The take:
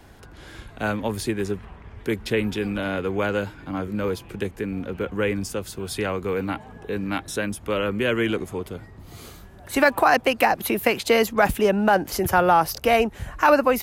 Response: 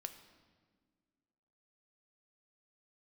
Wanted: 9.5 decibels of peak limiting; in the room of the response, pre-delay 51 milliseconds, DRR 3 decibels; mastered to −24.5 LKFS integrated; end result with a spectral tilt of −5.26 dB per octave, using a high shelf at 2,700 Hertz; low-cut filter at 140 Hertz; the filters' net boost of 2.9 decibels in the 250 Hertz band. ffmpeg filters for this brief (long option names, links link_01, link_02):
-filter_complex "[0:a]highpass=140,equalizer=frequency=250:width_type=o:gain=4.5,highshelf=frequency=2700:gain=-8.5,alimiter=limit=-15.5dB:level=0:latency=1,asplit=2[link_01][link_02];[1:a]atrim=start_sample=2205,adelay=51[link_03];[link_02][link_03]afir=irnorm=-1:irlink=0,volume=0.5dB[link_04];[link_01][link_04]amix=inputs=2:normalize=0,volume=0.5dB"